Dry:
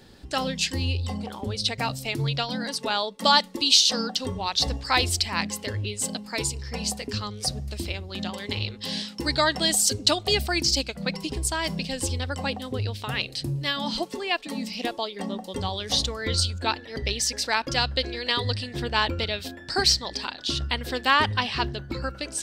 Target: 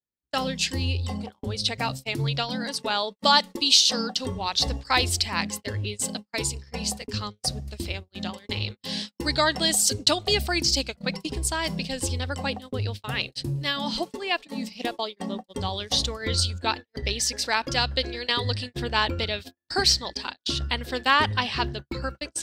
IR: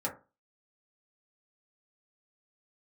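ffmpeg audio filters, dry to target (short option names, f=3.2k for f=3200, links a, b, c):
-af "agate=range=-49dB:threshold=-32dB:ratio=16:detection=peak"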